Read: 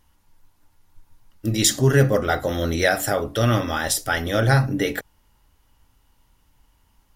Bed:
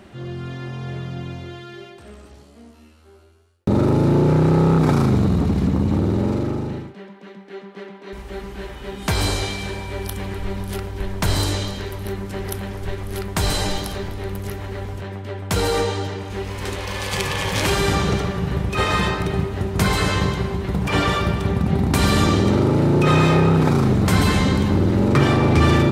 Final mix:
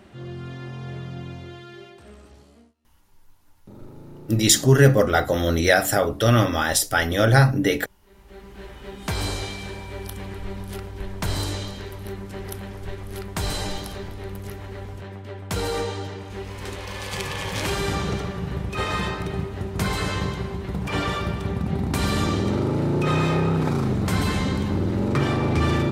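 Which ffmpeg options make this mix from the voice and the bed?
ffmpeg -i stem1.wav -i stem2.wav -filter_complex "[0:a]adelay=2850,volume=2dB[link_01];[1:a]volume=16.5dB,afade=type=out:start_time=2.53:duration=0.21:silence=0.0749894,afade=type=in:start_time=8.03:duration=0.74:silence=0.0891251[link_02];[link_01][link_02]amix=inputs=2:normalize=0" out.wav

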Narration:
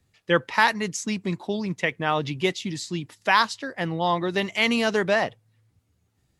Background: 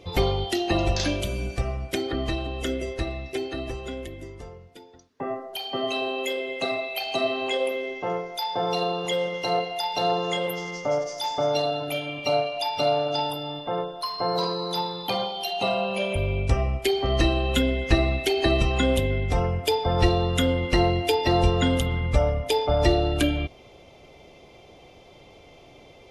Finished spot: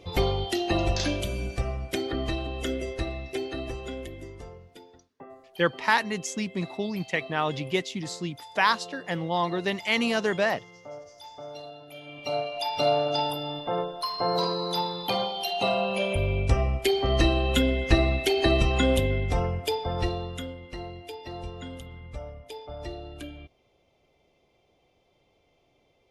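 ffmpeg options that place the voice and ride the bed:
ffmpeg -i stem1.wav -i stem2.wav -filter_complex "[0:a]adelay=5300,volume=-3dB[link_01];[1:a]volume=14.5dB,afade=type=out:start_time=4.91:duration=0.35:silence=0.177828,afade=type=in:start_time=11.92:duration=0.96:silence=0.149624,afade=type=out:start_time=19.02:duration=1.55:silence=0.141254[link_02];[link_01][link_02]amix=inputs=2:normalize=0" out.wav

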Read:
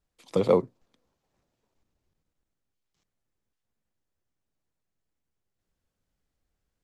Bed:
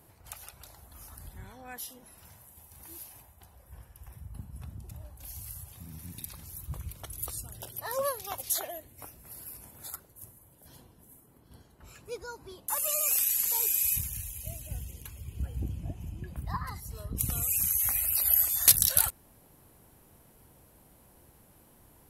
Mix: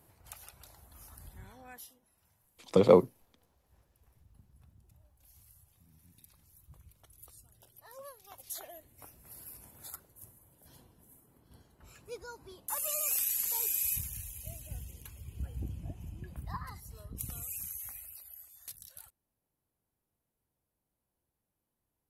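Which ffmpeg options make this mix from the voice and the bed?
ffmpeg -i stem1.wav -i stem2.wav -filter_complex "[0:a]adelay=2400,volume=1dB[link_01];[1:a]volume=9dB,afade=type=out:start_time=1.61:duration=0.39:silence=0.211349,afade=type=in:start_time=8.2:duration=1.15:silence=0.211349,afade=type=out:start_time=16.3:duration=1.99:silence=0.0707946[link_02];[link_01][link_02]amix=inputs=2:normalize=0" out.wav

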